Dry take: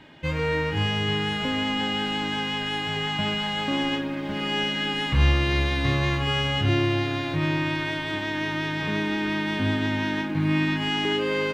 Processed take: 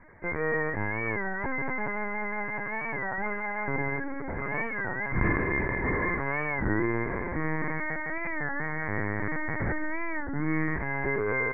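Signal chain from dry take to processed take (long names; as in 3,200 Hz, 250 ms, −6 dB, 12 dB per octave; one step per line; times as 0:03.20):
Chebyshev low-pass filter 2,200 Hz, order 8
low-shelf EQ 320 Hz −7 dB
linear-prediction vocoder at 8 kHz pitch kept
wow of a warped record 33 1/3 rpm, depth 160 cents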